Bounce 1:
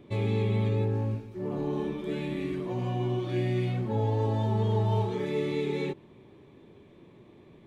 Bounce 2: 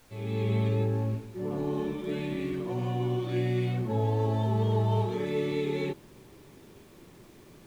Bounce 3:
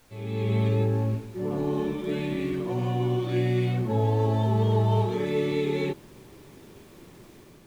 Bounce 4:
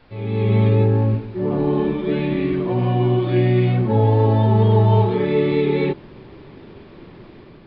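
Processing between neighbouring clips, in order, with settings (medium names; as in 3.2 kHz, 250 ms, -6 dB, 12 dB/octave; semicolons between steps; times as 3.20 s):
fade-in on the opening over 0.52 s; added noise pink -59 dBFS
level rider gain up to 3.5 dB
distance through air 180 m; resampled via 11.025 kHz; trim +8.5 dB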